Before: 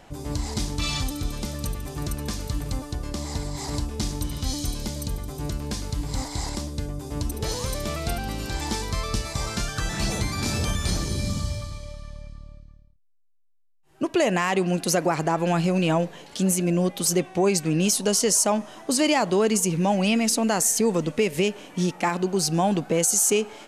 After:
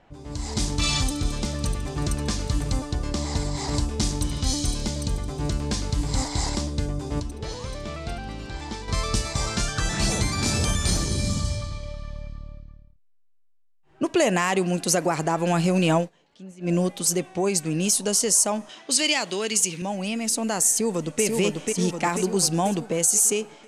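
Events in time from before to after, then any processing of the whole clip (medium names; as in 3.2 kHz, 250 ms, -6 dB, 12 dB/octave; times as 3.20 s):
7.20–8.88 s: gain -8 dB
15.97–16.73 s: dip -21 dB, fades 0.13 s
18.69–19.82 s: frequency weighting D
20.69–21.23 s: echo throw 490 ms, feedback 60%, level -4.5 dB
whole clip: level-controlled noise filter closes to 2.8 kHz, open at -18.5 dBFS; peaking EQ 8.7 kHz +6.5 dB 1 oct; level rider; trim -7.5 dB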